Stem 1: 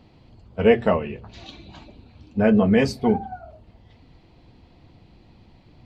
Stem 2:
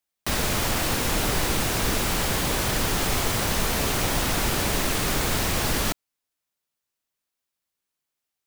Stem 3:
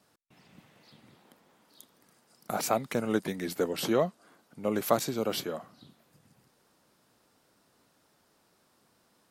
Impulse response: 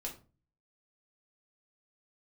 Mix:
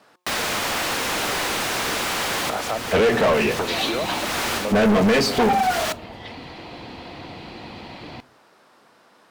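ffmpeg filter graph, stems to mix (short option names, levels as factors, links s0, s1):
-filter_complex "[0:a]alimiter=limit=0.2:level=0:latency=1:release=146,adelay=2350,volume=0.891,asplit=2[s0][s1];[s1]volume=0.2[s2];[1:a]volume=0.141,asplit=2[s3][s4];[s4]volume=0.188[s5];[2:a]bandreject=f=179.7:t=h:w=4,bandreject=f=359.4:t=h:w=4,bandreject=f=539.1:t=h:w=4,bandreject=f=718.8:t=h:w=4,bandreject=f=898.5:t=h:w=4,bandreject=f=1078.2:t=h:w=4,bandreject=f=1257.9:t=h:w=4,acompressor=threshold=0.01:ratio=3,highshelf=f=3400:g=-9.5,volume=0.562,asplit=2[s6][s7];[s7]apad=whole_len=373160[s8];[s3][s8]sidechaincompress=threshold=0.00251:ratio=8:attack=16:release=390[s9];[3:a]atrim=start_sample=2205[s10];[s2][s5]amix=inputs=2:normalize=0[s11];[s11][s10]afir=irnorm=-1:irlink=0[s12];[s0][s9][s6][s12]amix=inputs=4:normalize=0,asplit=2[s13][s14];[s14]highpass=f=720:p=1,volume=31.6,asoftclip=type=tanh:threshold=0.316[s15];[s13][s15]amix=inputs=2:normalize=0,lowpass=f=4000:p=1,volume=0.501"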